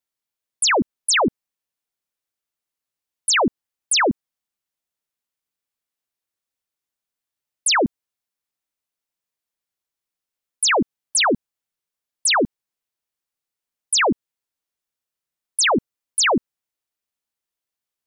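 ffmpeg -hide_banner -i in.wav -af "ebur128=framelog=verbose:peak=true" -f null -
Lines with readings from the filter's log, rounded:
Integrated loudness:
  I:         -19.5 LUFS
  Threshold: -29.6 LUFS
Loudness range:
  LRA:         4.8 LU
  Threshold: -44.1 LUFS
  LRA low:   -26.8 LUFS
  LRA high:  -22.0 LUFS
True peak:
  Peak:      -13.6 dBFS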